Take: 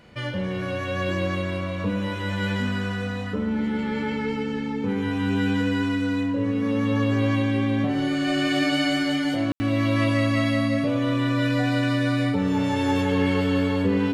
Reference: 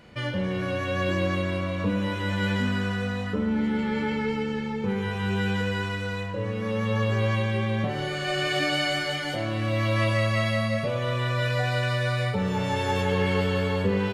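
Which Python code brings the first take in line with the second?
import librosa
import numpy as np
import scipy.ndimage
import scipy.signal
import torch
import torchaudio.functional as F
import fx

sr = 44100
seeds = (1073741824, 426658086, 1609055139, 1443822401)

y = fx.notch(x, sr, hz=280.0, q=30.0)
y = fx.fix_ambience(y, sr, seeds[0], print_start_s=0.0, print_end_s=0.5, start_s=9.52, end_s=9.6)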